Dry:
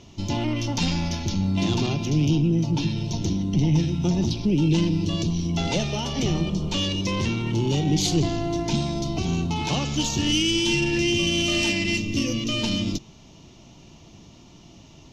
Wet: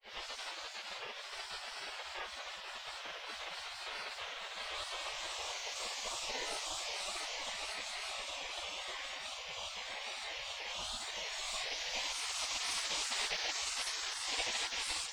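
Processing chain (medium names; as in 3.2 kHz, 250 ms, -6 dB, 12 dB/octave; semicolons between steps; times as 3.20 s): Paulstretch 39×, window 0.10 s, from 7.40 s; granulator 253 ms, grains 29 per s, pitch spread up and down by 7 st; spectral gate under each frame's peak -25 dB weak; trim +5.5 dB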